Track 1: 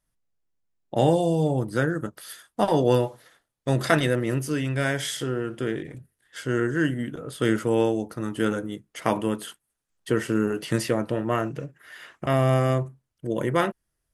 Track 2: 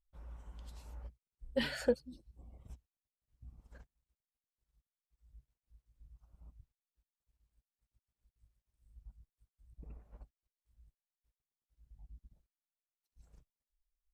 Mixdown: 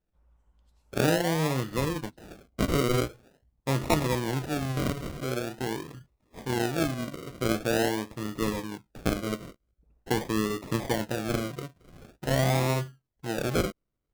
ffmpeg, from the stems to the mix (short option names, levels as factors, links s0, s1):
-filter_complex "[0:a]acrusher=samples=40:mix=1:aa=0.000001:lfo=1:lforange=24:lforate=0.45,volume=0.631[s0];[1:a]volume=0.2[s1];[s0][s1]amix=inputs=2:normalize=0"